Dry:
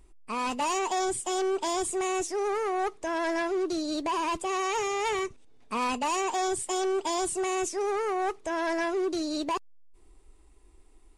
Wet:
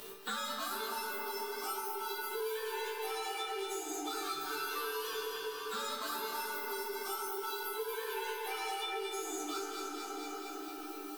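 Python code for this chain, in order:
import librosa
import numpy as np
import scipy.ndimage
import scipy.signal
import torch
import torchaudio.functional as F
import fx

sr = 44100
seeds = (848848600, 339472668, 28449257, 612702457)

y = fx.partial_stretch(x, sr, pct=118)
y = fx.high_shelf(y, sr, hz=9700.0, db=-11.5)
y = fx.rider(y, sr, range_db=4, speed_s=0.5)
y = fx.riaa(y, sr, side='recording')
y = fx.resonator_bank(y, sr, root=50, chord='sus4', decay_s=0.26)
y = fx.echo_feedback(y, sr, ms=227, feedback_pct=47, wet_db=-8.0)
y = fx.room_shoebox(y, sr, seeds[0], volume_m3=210.0, walls='hard', distance_m=0.51)
y = fx.band_squash(y, sr, depth_pct=100)
y = F.gain(torch.from_numpy(y), 3.5).numpy()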